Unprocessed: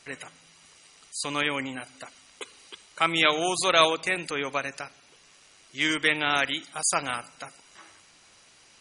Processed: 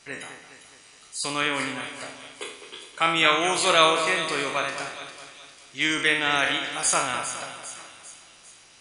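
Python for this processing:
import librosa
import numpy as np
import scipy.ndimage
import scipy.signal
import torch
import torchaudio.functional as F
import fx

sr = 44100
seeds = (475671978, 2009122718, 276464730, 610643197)

y = fx.spec_trails(x, sr, decay_s=0.59)
y = fx.echo_split(y, sr, split_hz=2900.0, low_ms=209, high_ms=401, feedback_pct=52, wet_db=-10)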